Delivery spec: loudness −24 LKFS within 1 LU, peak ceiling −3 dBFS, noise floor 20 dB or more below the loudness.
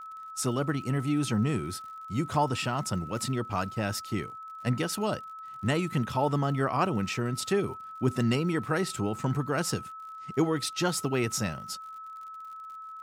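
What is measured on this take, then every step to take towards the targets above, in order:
crackle rate 51 per second; interfering tone 1,300 Hz; level of the tone −40 dBFS; integrated loudness −30.0 LKFS; sample peak −13.0 dBFS; target loudness −24.0 LKFS
→ click removal
notch filter 1,300 Hz, Q 30
level +6 dB

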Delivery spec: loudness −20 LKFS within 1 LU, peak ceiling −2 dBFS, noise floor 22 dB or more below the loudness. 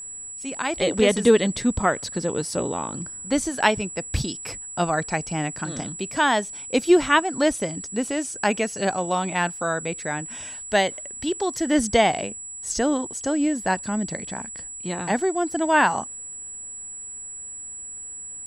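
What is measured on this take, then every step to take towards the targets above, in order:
crackle rate 36 per second; interfering tone 7,800 Hz; level of the tone −34 dBFS; integrated loudness −24.5 LKFS; sample peak −3.5 dBFS; target loudness −20.0 LKFS
→ click removal
notch filter 7,800 Hz, Q 30
level +4.5 dB
brickwall limiter −2 dBFS

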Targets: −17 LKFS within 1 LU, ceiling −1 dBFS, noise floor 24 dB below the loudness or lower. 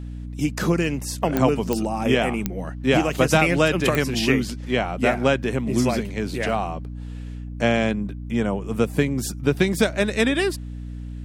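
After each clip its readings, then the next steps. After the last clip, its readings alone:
number of clicks 5; mains hum 60 Hz; hum harmonics up to 300 Hz; level of the hum −31 dBFS; integrated loudness −22.5 LKFS; sample peak −3.5 dBFS; target loudness −17.0 LKFS
→ click removal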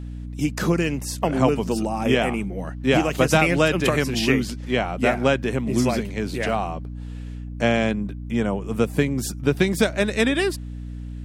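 number of clicks 1; mains hum 60 Hz; hum harmonics up to 300 Hz; level of the hum −31 dBFS
→ mains-hum notches 60/120/180/240/300 Hz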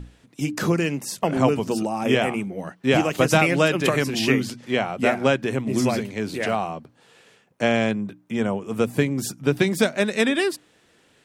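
mains hum none found; integrated loudness −22.5 LKFS; sample peak −3.5 dBFS; target loudness −17.0 LKFS
→ level +5.5 dB
brickwall limiter −1 dBFS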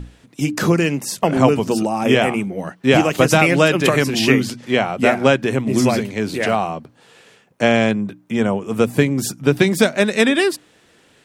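integrated loudness −17.5 LKFS; sample peak −1.0 dBFS; background noise floor −54 dBFS

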